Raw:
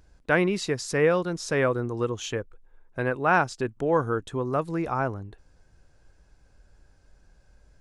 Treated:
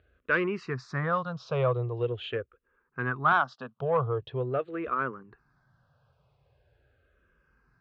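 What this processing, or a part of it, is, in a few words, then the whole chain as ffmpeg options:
barber-pole phaser into a guitar amplifier: -filter_complex "[0:a]asettb=1/sr,asplit=3[a][b][c];[a]atrim=end=3.324[d];[b]atrim=start=3.32:end=3.8,asetpts=PTS-STARTPTS,afade=t=in:d=0.004:c=qsin,afade=t=out:st=0.476:d=0.004:c=qsin,highpass=f=210:w=0.5412,highpass=f=210:w=1.3066[e];[c]atrim=start=3.796[f];[d][e]acrossfade=d=0.004:c1=hsin:c2=qsin[g];[g][f]acrossfade=d=0.004:c1=qsin:c2=hsin,asplit=2[h][i];[i]afreqshift=-0.43[j];[h][j]amix=inputs=2:normalize=1,asoftclip=type=tanh:threshold=-16.5dB,highpass=98,equalizer=f=130:t=q:w=4:g=6,equalizer=f=190:t=q:w=4:g=-7,equalizer=f=300:t=q:w=4:g=-10,equalizer=f=850:t=q:w=4:g=-4,equalizer=f=1.2k:t=q:w=4:g=7,equalizer=f=2.1k:t=q:w=4:g=-5,lowpass=f=3.5k:w=0.5412,lowpass=f=3.5k:w=1.3066,volume=1dB"

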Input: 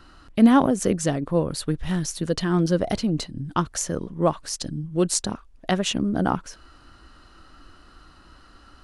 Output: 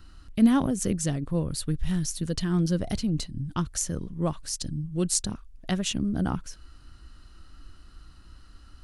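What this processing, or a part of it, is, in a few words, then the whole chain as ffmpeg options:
smiley-face EQ: -af "lowshelf=f=170:g=8.5,equalizer=f=680:t=o:w=2.9:g=-8,highshelf=f=8.8k:g=6.5,volume=-3.5dB"

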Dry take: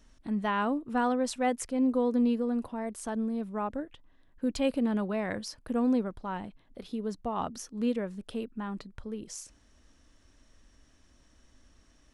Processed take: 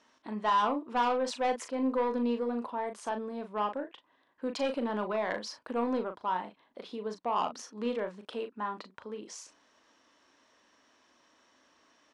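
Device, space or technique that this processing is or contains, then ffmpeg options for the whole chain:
intercom: -filter_complex "[0:a]highpass=390,lowpass=5k,equalizer=f=990:t=o:w=0.42:g=6.5,asoftclip=type=tanh:threshold=-24.5dB,asplit=2[a][b];[b]adelay=38,volume=-8dB[c];[a][c]amix=inputs=2:normalize=0,volume=2.5dB"

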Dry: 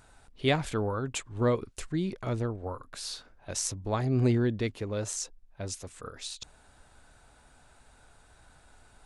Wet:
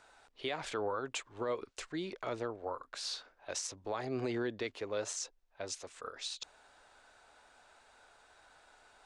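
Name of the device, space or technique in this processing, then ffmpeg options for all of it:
DJ mixer with the lows and highs turned down: -filter_complex "[0:a]acrossover=split=360 7600:gain=0.112 1 0.0891[a][b][c];[a][b][c]amix=inputs=3:normalize=0,alimiter=level_in=2dB:limit=-24dB:level=0:latency=1:release=73,volume=-2dB"

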